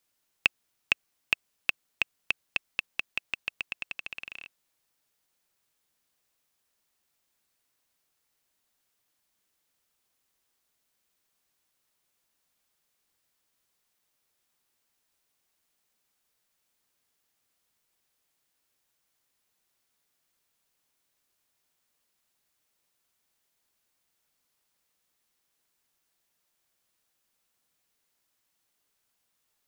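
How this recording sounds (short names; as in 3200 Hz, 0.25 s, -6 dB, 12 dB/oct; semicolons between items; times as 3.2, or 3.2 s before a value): noise floor -78 dBFS; spectral tilt -2.5 dB/oct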